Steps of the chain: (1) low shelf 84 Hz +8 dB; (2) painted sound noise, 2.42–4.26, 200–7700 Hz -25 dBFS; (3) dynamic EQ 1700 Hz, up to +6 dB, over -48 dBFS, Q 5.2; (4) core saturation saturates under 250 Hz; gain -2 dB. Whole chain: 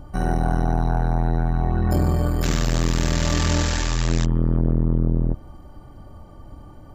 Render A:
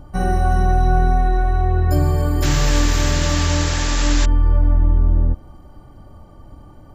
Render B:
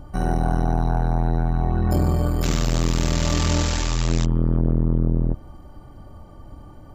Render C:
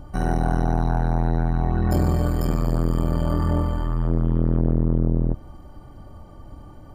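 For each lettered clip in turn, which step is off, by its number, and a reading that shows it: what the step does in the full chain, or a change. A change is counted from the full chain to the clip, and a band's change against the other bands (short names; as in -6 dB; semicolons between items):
4, crest factor change -3.5 dB; 3, 2 kHz band -2.5 dB; 2, 8 kHz band -14.5 dB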